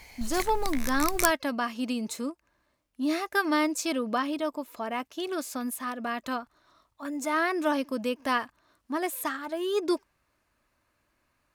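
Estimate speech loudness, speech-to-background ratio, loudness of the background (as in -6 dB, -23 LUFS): -30.0 LUFS, 3.5 dB, -33.5 LUFS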